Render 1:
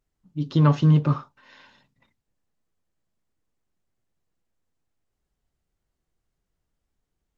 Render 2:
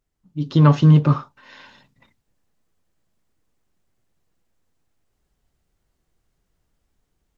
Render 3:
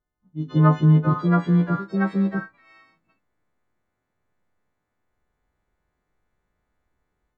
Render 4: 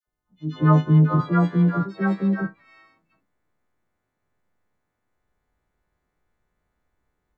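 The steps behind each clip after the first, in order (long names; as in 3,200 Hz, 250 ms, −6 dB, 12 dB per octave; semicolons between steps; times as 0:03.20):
automatic gain control gain up to 7 dB; level +1 dB
every partial snapped to a pitch grid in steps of 3 semitones; Savitzky-Golay smoothing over 41 samples; delay with pitch and tempo change per echo 748 ms, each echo +2 semitones, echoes 2; level −3 dB
all-pass dispersion lows, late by 73 ms, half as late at 950 Hz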